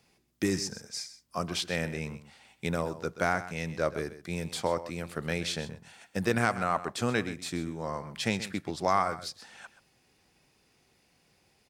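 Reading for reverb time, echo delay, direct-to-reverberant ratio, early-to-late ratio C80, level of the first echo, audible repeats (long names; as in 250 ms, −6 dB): no reverb audible, 129 ms, no reverb audible, no reverb audible, −14.0 dB, 1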